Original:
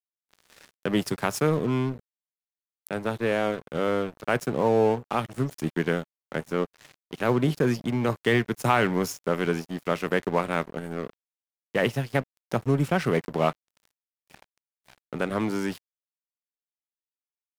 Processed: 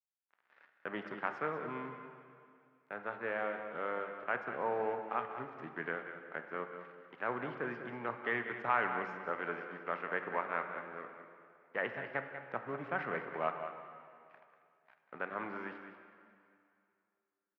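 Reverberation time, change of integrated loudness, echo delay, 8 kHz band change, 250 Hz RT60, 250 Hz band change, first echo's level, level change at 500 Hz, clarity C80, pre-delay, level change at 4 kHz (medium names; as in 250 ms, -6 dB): 2.4 s, -12.0 dB, 192 ms, under -35 dB, 2.3 s, -19.0 dB, -10.5 dB, -13.5 dB, 6.5 dB, 8 ms, -19.5 dB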